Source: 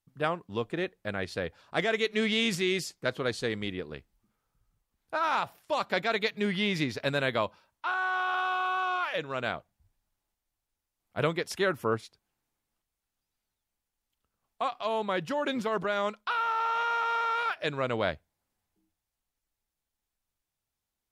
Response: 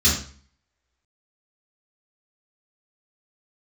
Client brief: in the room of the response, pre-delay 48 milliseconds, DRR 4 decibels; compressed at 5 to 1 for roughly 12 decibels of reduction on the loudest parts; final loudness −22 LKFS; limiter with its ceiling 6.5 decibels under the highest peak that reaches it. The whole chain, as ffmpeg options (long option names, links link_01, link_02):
-filter_complex "[0:a]acompressor=threshold=-37dB:ratio=5,alimiter=level_in=5.5dB:limit=-24dB:level=0:latency=1,volume=-5.5dB,asplit=2[link_01][link_02];[1:a]atrim=start_sample=2205,adelay=48[link_03];[link_02][link_03]afir=irnorm=-1:irlink=0,volume=-20dB[link_04];[link_01][link_04]amix=inputs=2:normalize=0,volume=16.5dB"